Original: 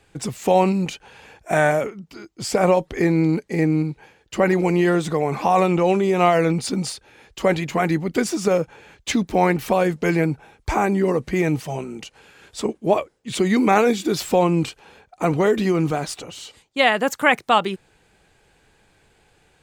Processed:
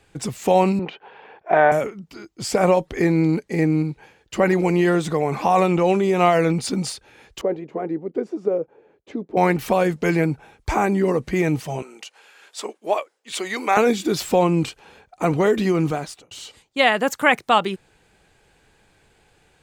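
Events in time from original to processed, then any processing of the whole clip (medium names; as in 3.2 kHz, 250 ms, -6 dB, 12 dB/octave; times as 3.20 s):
0.79–1.72 s: cabinet simulation 240–3100 Hz, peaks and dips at 250 Hz -4 dB, 410 Hz +6 dB, 730 Hz +5 dB, 1 kHz +5 dB, 2.5 kHz -4 dB
7.41–9.37 s: band-pass filter 420 Hz, Q 2.1
11.82–13.77 s: high-pass 600 Hz
15.88–16.31 s: fade out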